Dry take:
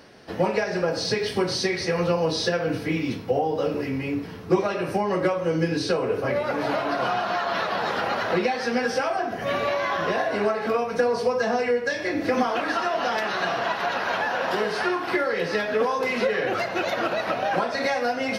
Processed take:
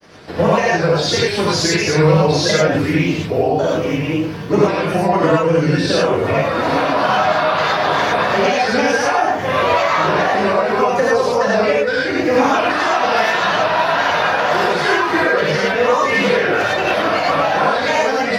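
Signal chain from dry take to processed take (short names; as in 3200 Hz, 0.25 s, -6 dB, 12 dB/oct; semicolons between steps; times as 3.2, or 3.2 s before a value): grains, spray 18 ms, pitch spread up and down by 3 st; non-linear reverb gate 0.13 s rising, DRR -5 dB; gain +5 dB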